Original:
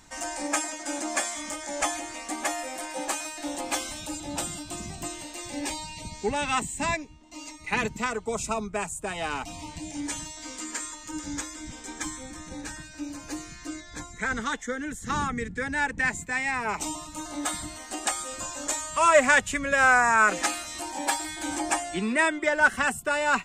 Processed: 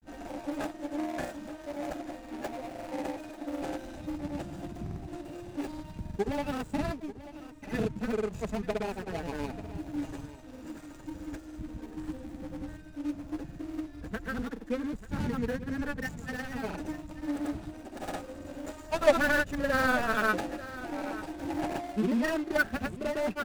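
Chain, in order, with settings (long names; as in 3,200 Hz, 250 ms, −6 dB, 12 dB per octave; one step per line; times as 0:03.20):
running median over 41 samples
granular cloud, pitch spread up and down by 0 semitones
single-tap delay 889 ms −15.5 dB
level +2.5 dB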